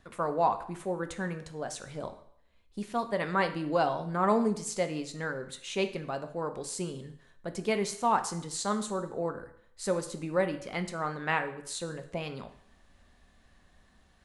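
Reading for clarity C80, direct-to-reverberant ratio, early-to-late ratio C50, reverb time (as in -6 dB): 15.5 dB, 7.5 dB, 12.0 dB, 0.65 s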